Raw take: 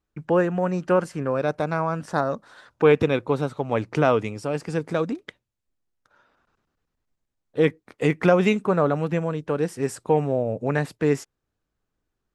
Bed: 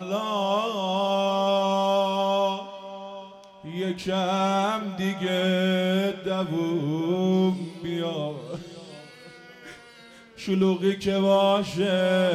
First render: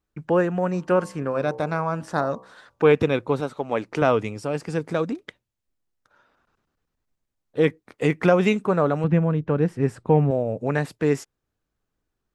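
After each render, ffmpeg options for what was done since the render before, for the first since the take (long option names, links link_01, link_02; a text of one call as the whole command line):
ffmpeg -i in.wav -filter_complex "[0:a]asplit=3[link_01][link_02][link_03];[link_01]afade=type=out:start_time=0.72:duration=0.02[link_04];[link_02]bandreject=frequency=64.12:width_type=h:width=4,bandreject=frequency=128.24:width_type=h:width=4,bandreject=frequency=192.36:width_type=h:width=4,bandreject=frequency=256.48:width_type=h:width=4,bandreject=frequency=320.6:width_type=h:width=4,bandreject=frequency=384.72:width_type=h:width=4,bandreject=frequency=448.84:width_type=h:width=4,bandreject=frequency=512.96:width_type=h:width=4,bandreject=frequency=577.08:width_type=h:width=4,bandreject=frequency=641.2:width_type=h:width=4,bandreject=frequency=705.32:width_type=h:width=4,bandreject=frequency=769.44:width_type=h:width=4,bandreject=frequency=833.56:width_type=h:width=4,bandreject=frequency=897.68:width_type=h:width=4,bandreject=frequency=961.8:width_type=h:width=4,bandreject=frequency=1025.92:width_type=h:width=4,bandreject=frequency=1090.04:width_type=h:width=4,bandreject=frequency=1154.16:width_type=h:width=4,afade=type=in:start_time=0.72:duration=0.02,afade=type=out:start_time=2.83:duration=0.02[link_05];[link_03]afade=type=in:start_time=2.83:duration=0.02[link_06];[link_04][link_05][link_06]amix=inputs=3:normalize=0,asettb=1/sr,asplit=3[link_07][link_08][link_09];[link_07]atrim=end=3.404[link_10];[link_08]atrim=start=3.4:end=4.02,asetpts=PTS-STARTPTS,afade=type=in:duration=0.004:curve=qsin,afade=type=out:start_time=0.616:duration=0.004:curve=qsin,equalizer=frequency=95:width=1.1:gain=-13[link_11];[link_09]atrim=start=4.016[link_12];[link_10][link_11]acrossfade=duration=0.004:curve1=hsin:curve2=qsin[link_13];[link_13][link_12]acrossfade=duration=0.004:curve1=qsin:curve2=hsin,asettb=1/sr,asplit=3[link_14][link_15][link_16];[link_14]atrim=end=9.044[link_17];[link_15]atrim=start=9.04:end=10.31,asetpts=PTS-STARTPTS,afade=type=in:duration=0.004:curve=qsin,afade=type=out:start_time=1.266:duration=0.004:curve=qsin,bass=frequency=250:gain=9,treble=frequency=4000:gain=-14[link_18];[link_16]atrim=start=10.306[link_19];[link_17][link_18]acrossfade=duration=0.004:curve1=hsin:curve2=qsin[link_20];[link_20][link_19]acrossfade=duration=0.004:curve1=qsin:curve2=hsin" out.wav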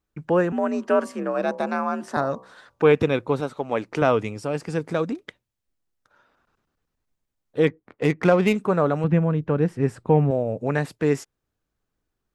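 ffmpeg -i in.wav -filter_complex "[0:a]asettb=1/sr,asplit=3[link_01][link_02][link_03];[link_01]atrim=end=0.524[link_04];[link_02]atrim=start=0.52:end=2.17,asetpts=PTS-STARTPTS,afade=type=in:duration=0.004:curve=qsin,afade=type=out:start_time=1.646:duration=0.004:curve=qsin,afreqshift=60[link_05];[link_03]atrim=start=2.166[link_06];[link_04][link_05]acrossfade=duration=0.004:curve1=hsin:curve2=qsin[link_07];[link_07][link_06]acrossfade=duration=0.004:curve1=qsin:curve2=hsin,asettb=1/sr,asplit=3[link_08][link_09][link_10];[link_08]atrim=end=7.674[link_11];[link_09]atrim=start=7.67:end=8.55,asetpts=PTS-STARTPTS,afade=type=in:duration=0.004:curve=qsin,afade=type=out:start_time=0.876:duration=0.004:curve=qsin,adynamicsmooth=sensitivity=3:basefreq=1900[link_12];[link_10]atrim=start=8.546[link_13];[link_11][link_12]acrossfade=duration=0.004:curve1=hsin:curve2=qsin[link_14];[link_14][link_13]acrossfade=duration=0.004:curve1=qsin:curve2=hsin" out.wav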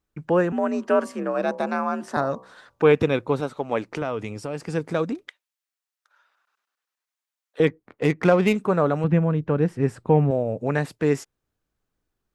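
ffmpeg -i in.wav -filter_complex "[0:a]asettb=1/sr,asplit=3[link_01][link_02][link_03];[link_01]atrim=end=3.894[link_04];[link_02]atrim=start=3.89:end=4.63,asetpts=PTS-STARTPTS,afade=type=in:duration=0.004:curve=qsin,afade=type=out:start_time=0.736:duration=0.004:curve=qsin,acompressor=threshold=-26dB:ratio=2.5:attack=3.2:release=140:knee=1:detection=peak[link_05];[link_03]atrim=start=4.626[link_06];[link_04][link_05]acrossfade=duration=0.004:curve1=hsin:curve2=qsin[link_07];[link_07][link_06]acrossfade=duration=0.004:curve1=qsin:curve2=hsin,asettb=1/sr,asplit=3[link_08][link_09][link_10];[link_08]atrim=end=5.284[link_11];[link_09]atrim=start=5.28:end=7.6,asetpts=PTS-STARTPTS,afade=type=in:duration=0.004:curve=qsin,afade=type=out:start_time=2.316:duration=0.004:curve=qsin,highpass=1100[link_12];[link_10]atrim=start=7.596[link_13];[link_11][link_12]acrossfade=duration=0.004:curve1=hsin:curve2=qsin[link_14];[link_14][link_13]acrossfade=duration=0.004:curve1=qsin:curve2=hsin" out.wav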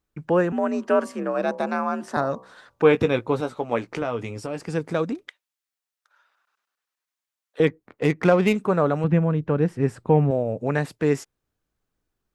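ffmpeg -i in.wav -filter_complex "[0:a]asettb=1/sr,asplit=3[link_01][link_02][link_03];[link_01]atrim=end=2.834[link_04];[link_02]atrim=start=2.83:end=4.6,asetpts=PTS-STARTPTS,afade=type=in:duration=0.004:curve=qsin,afade=type=out:start_time=1.766:duration=0.004:curve=qsin,asplit=2[link_05][link_06];[link_06]adelay=17,volume=-9dB[link_07];[link_05][link_07]amix=inputs=2:normalize=0,atrim=end_sample=78057[link_08];[link_03]atrim=start=4.596[link_09];[link_04][link_08]acrossfade=duration=0.004:curve1=hsin:curve2=qsin[link_10];[link_10][link_09]acrossfade=duration=0.004:curve1=qsin:curve2=hsin" out.wav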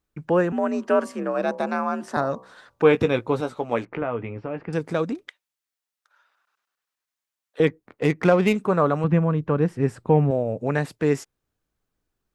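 ffmpeg -i in.wav -filter_complex "[0:a]asettb=1/sr,asplit=3[link_01][link_02][link_03];[link_01]atrim=end=3.854[link_04];[link_02]atrim=start=3.85:end=4.73,asetpts=PTS-STARTPTS,afade=type=in:duration=0.004:curve=qsin,afade=type=out:start_time=0.876:duration=0.004:curve=qsin,lowpass=frequency=2500:width=0.5412,lowpass=frequency=2500:width=1.3066[link_05];[link_03]atrim=start=4.726[link_06];[link_04][link_05]acrossfade=duration=0.004:curve1=hsin:curve2=qsin[link_07];[link_07][link_06]acrossfade=duration=0.004:curve1=qsin:curve2=hsin,asettb=1/sr,asplit=3[link_08][link_09][link_10];[link_08]atrim=end=8.724[link_11];[link_09]atrim=start=8.72:end=9.67,asetpts=PTS-STARTPTS,afade=type=in:duration=0.004:curve=qsin,afade=type=out:start_time=0.946:duration=0.004:curve=qsin,equalizer=frequency=1100:width_type=o:width=0.29:gain=6.5[link_12];[link_10]atrim=start=9.666[link_13];[link_11][link_12]acrossfade=duration=0.004:curve1=hsin:curve2=qsin[link_14];[link_14][link_13]acrossfade=duration=0.004:curve1=qsin:curve2=hsin" out.wav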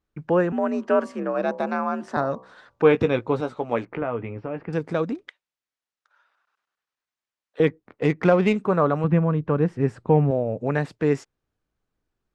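ffmpeg -i in.wav -af "lowpass=7500,highshelf=frequency=3900:gain=-6" out.wav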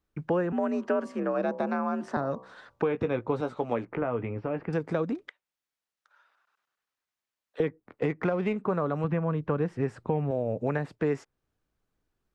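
ffmpeg -i in.wav -filter_complex "[0:a]alimiter=limit=-11dB:level=0:latency=1:release=480,acrossover=split=470|2200[link_01][link_02][link_03];[link_01]acompressor=threshold=-28dB:ratio=4[link_04];[link_02]acompressor=threshold=-30dB:ratio=4[link_05];[link_03]acompressor=threshold=-53dB:ratio=4[link_06];[link_04][link_05][link_06]amix=inputs=3:normalize=0" out.wav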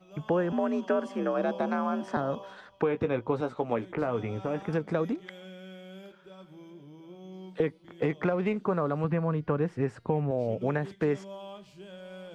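ffmpeg -i in.wav -i bed.wav -filter_complex "[1:a]volume=-23dB[link_01];[0:a][link_01]amix=inputs=2:normalize=0" out.wav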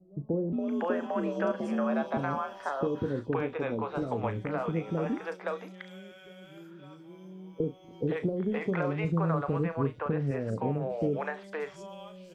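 ffmpeg -i in.wav -filter_complex "[0:a]asplit=2[link_01][link_02];[link_02]adelay=36,volume=-11.5dB[link_03];[link_01][link_03]amix=inputs=2:normalize=0,acrossover=split=500|4300[link_04][link_05][link_06];[link_05]adelay=520[link_07];[link_06]adelay=590[link_08];[link_04][link_07][link_08]amix=inputs=3:normalize=0" out.wav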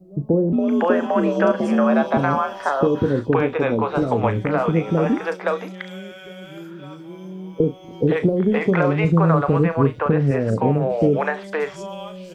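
ffmpeg -i in.wav -af "volume=12dB" out.wav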